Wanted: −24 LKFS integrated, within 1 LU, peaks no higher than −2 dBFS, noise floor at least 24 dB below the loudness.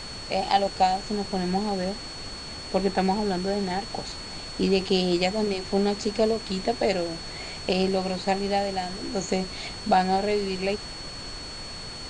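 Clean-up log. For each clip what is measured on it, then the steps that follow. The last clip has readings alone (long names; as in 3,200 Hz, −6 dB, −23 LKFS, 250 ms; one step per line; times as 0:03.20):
interfering tone 4,400 Hz; level of the tone −38 dBFS; background noise floor −38 dBFS; target noise floor −51 dBFS; integrated loudness −26.5 LKFS; sample peak −8.0 dBFS; target loudness −24.0 LKFS
→ notch filter 4,400 Hz, Q 30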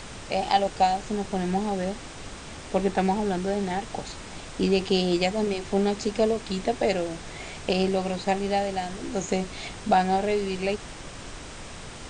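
interfering tone none found; background noise floor −41 dBFS; target noise floor −51 dBFS
→ noise reduction from a noise print 10 dB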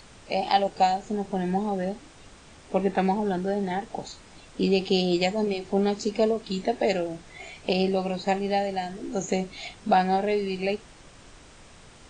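background noise floor −51 dBFS; integrated loudness −26.5 LKFS; sample peak −8.5 dBFS; target loudness −24.0 LKFS
→ level +2.5 dB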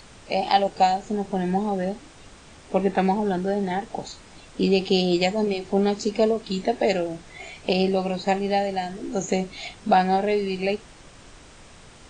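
integrated loudness −24.0 LKFS; sample peak −6.0 dBFS; background noise floor −48 dBFS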